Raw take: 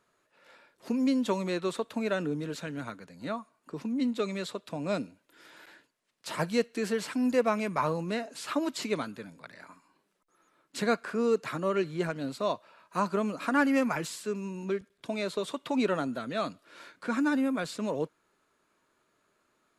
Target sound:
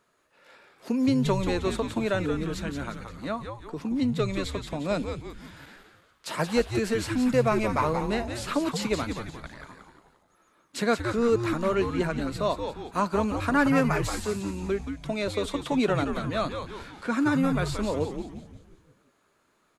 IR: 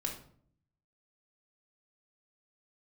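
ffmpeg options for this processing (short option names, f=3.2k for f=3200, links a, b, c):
-filter_complex "[0:a]asplit=2[a][b];[b]volume=19.5dB,asoftclip=hard,volume=-19.5dB,volume=-8dB[c];[a][c]amix=inputs=2:normalize=0,asplit=7[d][e][f][g][h][i][j];[e]adelay=176,afreqshift=-120,volume=-6.5dB[k];[f]adelay=352,afreqshift=-240,volume=-12.9dB[l];[g]adelay=528,afreqshift=-360,volume=-19.3dB[m];[h]adelay=704,afreqshift=-480,volume=-25.6dB[n];[i]adelay=880,afreqshift=-600,volume=-32dB[o];[j]adelay=1056,afreqshift=-720,volume=-38.4dB[p];[d][k][l][m][n][o][p]amix=inputs=7:normalize=0"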